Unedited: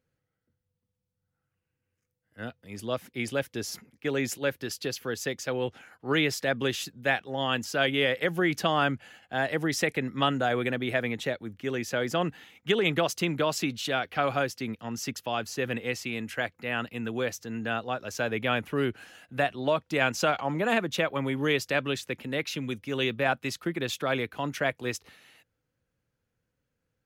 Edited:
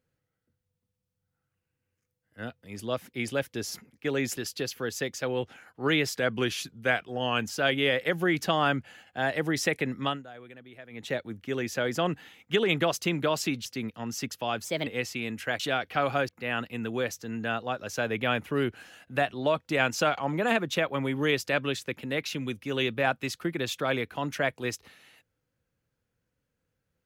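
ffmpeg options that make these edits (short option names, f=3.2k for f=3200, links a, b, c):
-filter_complex "[0:a]asplit=11[a][b][c][d][e][f][g][h][i][j][k];[a]atrim=end=4.372[l];[b]atrim=start=4.618:end=6.414[m];[c]atrim=start=6.41:end=7.63,asetpts=PTS-STARTPTS,asetrate=41013,aresample=44100[n];[d]atrim=start=7.626:end=10.39,asetpts=PTS-STARTPTS,afade=t=out:st=2.514:d=0.25:silence=0.105925[o];[e]atrim=start=10.39:end=11.06,asetpts=PTS-STARTPTS,volume=-19.5dB[p];[f]atrim=start=11.06:end=13.812,asetpts=PTS-STARTPTS,afade=t=in:d=0.25:silence=0.105925[q];[g]atrim=start=14.498:end=15.494[r];[h]atrim=start=15.49:end=15.77,asetpts=PTS-STARTPTS,asetrate=55125,aresample=44100,atrim=end_sample=9878,asetpts=PTS-STARTPTS[s];[i]atrim=start=15.766:end=16.502[t];[j]atrim=start=13.808:end=14.502[u];[k]atrim=start=16.498[v];[l][m]acrossfade=d=0.004:c1=hsin:c2=hsin[w];[w][n]acrossfade=d=0.004:c1=hsin:c2=hsin[x];[o][p][q]concat=n=3:v=0:a=1[y];[x][y]acrossfade=d=0.004:c1=hsin:c2=hsin[z];[z][r]acrossfade=d=0.004:c1=hsin:c2=hsin[aa];[aa][s]acrossfade=d=0.004:c1=hsin:c2=hsin[ab];[ab][t]acrossfade=d=0.004:c1=hsin:c2=hsin[ac];[ac][u]acrossfade=d=0.004:c1=hsin:c2=hsin[ad];[ad][v]acrossfade=d=0.004:c1=hsin:c2=hsin"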